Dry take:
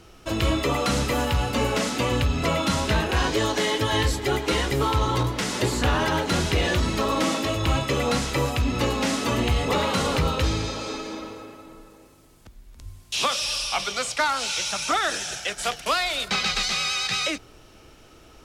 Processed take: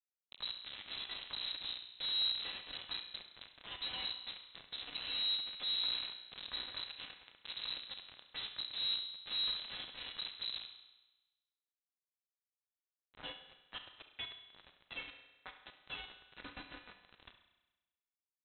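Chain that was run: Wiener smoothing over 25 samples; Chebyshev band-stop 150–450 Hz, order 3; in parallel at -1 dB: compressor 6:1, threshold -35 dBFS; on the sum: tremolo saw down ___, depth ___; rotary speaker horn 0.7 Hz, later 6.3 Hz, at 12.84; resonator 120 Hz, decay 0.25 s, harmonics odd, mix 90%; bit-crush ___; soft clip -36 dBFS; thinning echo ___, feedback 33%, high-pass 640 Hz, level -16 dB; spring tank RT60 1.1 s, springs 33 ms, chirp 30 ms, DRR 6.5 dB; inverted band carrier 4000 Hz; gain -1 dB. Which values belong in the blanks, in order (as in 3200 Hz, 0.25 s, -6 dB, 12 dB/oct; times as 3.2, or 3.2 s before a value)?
1.1 Hz, 40%, 6-bit, 70 ms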